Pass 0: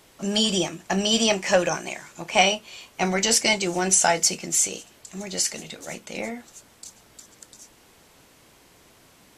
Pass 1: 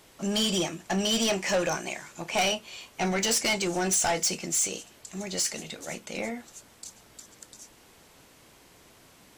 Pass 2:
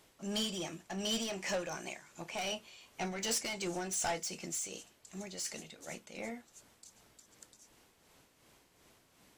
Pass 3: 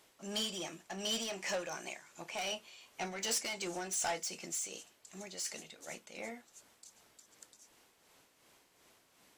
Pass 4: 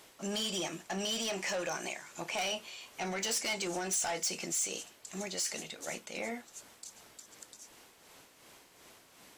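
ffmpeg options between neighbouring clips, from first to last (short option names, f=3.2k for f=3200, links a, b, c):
-af "asoftclip=type=tanh:threshold=-19.5dB,volume=-1dB"
-af "tremolo=f=2.7:d=0.48,volume=-8dB"
-af "lowshelf=f=220:g=-10.5"
-af "alimiter=level_in=12dB:limit=-24dB:level=0:latency=1:release=77,volume=-12dB,volume=8.5dB"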